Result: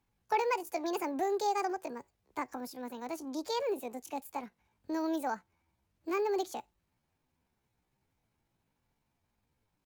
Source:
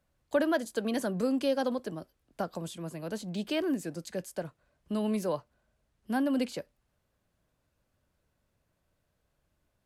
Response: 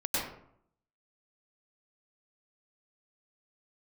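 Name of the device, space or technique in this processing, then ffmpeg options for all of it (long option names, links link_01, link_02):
chipmunk voice: -af "asetrate=66075,aresample=44100,atempo=0.66742,volume=-3dB"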